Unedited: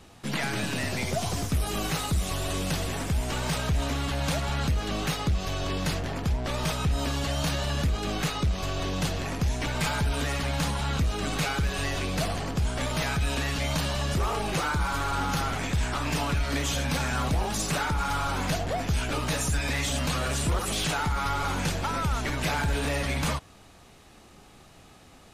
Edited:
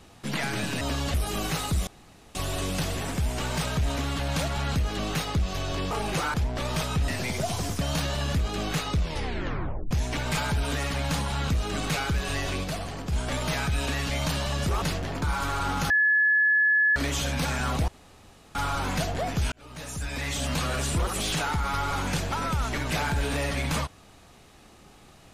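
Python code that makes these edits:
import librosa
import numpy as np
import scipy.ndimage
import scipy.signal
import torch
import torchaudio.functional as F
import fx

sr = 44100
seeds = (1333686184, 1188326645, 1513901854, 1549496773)

y = fx.edit(x, sr, fx.swap(start_s=0.81, length_s=0.73, other_s=6.97, other_length_s=0.33),
    fx.insert_room_tone(at_s=2.27, length_s=0.48),
    fx.swap(start_s=5.83, length_s=0.4, other_s=14.31, other_length_s=0.43),
    fx.tape_stop(start_s=8.45, length_s=0.95),
    fx.clip_gain(start_s=12.13, length_s=0.48, db=-4.0),
    fx.bleep(start_s=15.42, length_s=1.06, hz=1710.0, db=-18.0),
    fx.room_tone_fill(start_s=17.4, length_s=0.67),
    fx.fade_in_span(start_s=19.04, length_s=1.02), tone=tone)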